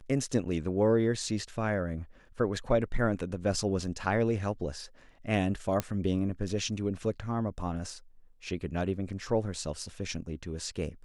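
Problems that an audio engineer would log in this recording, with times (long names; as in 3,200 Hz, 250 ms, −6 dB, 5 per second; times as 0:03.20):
0:05.80: click −14 dBFS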